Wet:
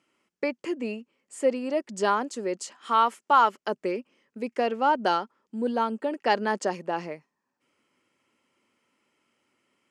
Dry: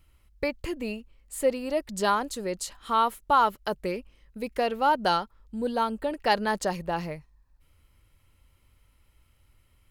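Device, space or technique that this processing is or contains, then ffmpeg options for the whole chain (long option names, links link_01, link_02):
television speaker: -filter_complex "[0:a]asettb=1/sr,asplit=3[link_01][link_02][link_03];[link_01]atrim=end=2.764[link_04];[link_02]atrim=start=2.76:end=3.57,asetpts=PTS-STARTPTS,afade=type=in:duration=0.004:curve=qsin,afade=type=out:start_time=0.806:duration=0.004:curve=qsin,tiltshelf=frequency=650:gain=-4.5[link_05];[link_03]atrim=start=3.566[link_06];[link_04][link_05]acrossfade=duration=0.004:curve1=hsin:curve2=qsin[link_07];[link_07][link_06]acrossfade=duration=0.004:curve1=qsin:curve2=hsin,highpass=frequency=210:width=0.5412,highpass=frequency=210:width=1.3066,equalizer=frequency=240:width_type=q:width=4:gain=4,equalizer=frequency=380:width_type=q:width=4:gain=4,equalizer=frequency=3900:width_type=q:width=4:gain=-9,lowpass=frequency=8000:width=0.5412,lowpass=frequency=8000:width=1.3066"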